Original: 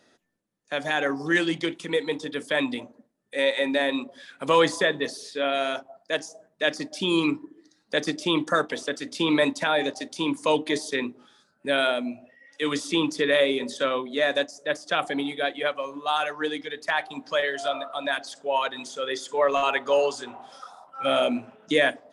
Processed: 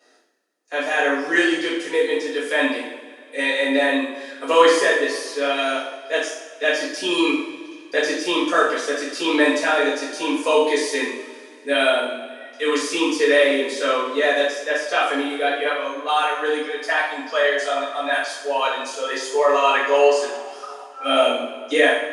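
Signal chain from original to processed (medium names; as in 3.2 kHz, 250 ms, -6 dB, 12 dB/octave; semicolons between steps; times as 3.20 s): Chebyshev high-pass 310 Hz, order 3; band-stop 3.5 kHz, Q 10; two-slope reverb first 0.61 s, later 2.5 s, from -17 dB, DRR -9.5 dB; trim -3 dB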